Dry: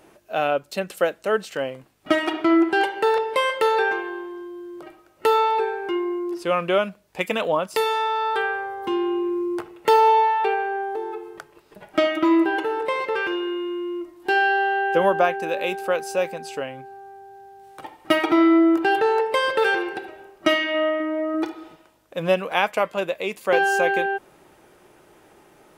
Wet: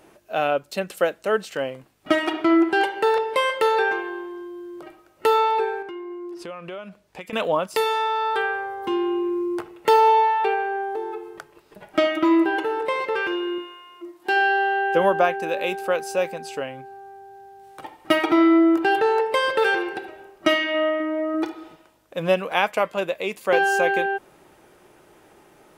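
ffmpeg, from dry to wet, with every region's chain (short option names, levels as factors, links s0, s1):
-filter_complex "[0:a]asettb=1/sr,asplit=3[s0][s1][s2];[s0]atrim=end=5.824[s3];[s1]atrim=start=5.82:end=7.33,asetpts=PTS-STARTPTS,afade=t=in:d=0.004:c=qsin,afade=t=out:st=1.506:d=0.004:c=qsin,highshelf=f=11000:g=-9.5,acompressor=threshold=0.0224:ratio=5:attack=3.2:release=140:knee=1:detection=peak[s4];[s2]atrim=start=7.326[s5];[s3][s4]acrossfade=d=0.004:c1=hsin:c2=qsin[s6];[s6][s5]acrossfade=d=0.004:c1=qsin:c2=hsin,asettb=1/sr,asplit=3[s7][s8][s9];[s7]atrim=end=13.584[s10];[s8]atrim=start=13.58:end=14.41,asetpts=PTS-STARTPTS,afade=t=in:d=0.004:c=qsin,afade=t=out:st=0.826:d=0.004:c=qsin,highpass=f=200:p=1,bandreject=f=50:t=h:w=6,bandreject=f=100:t=h:w=6,bandreject=f=150:t=h:w=6,bandreject=f=200:t=h:w=6,bandreject=f=250:t=h:w=6,bandreject=f=300:t=h:w=6,bandreject=f=350:t=h:w=6,bandreject=f=400:t=h:w=6,bandreject=f=450:t=h:w=6[s11];[s9]atrim=start=14.406[s12];[s10][s11]acrossfade=d=0.004:c1=hsin:c2=qsin[s13];[s13][s12]acrossfade=d=0.004:c1=qsin:c2=hsin"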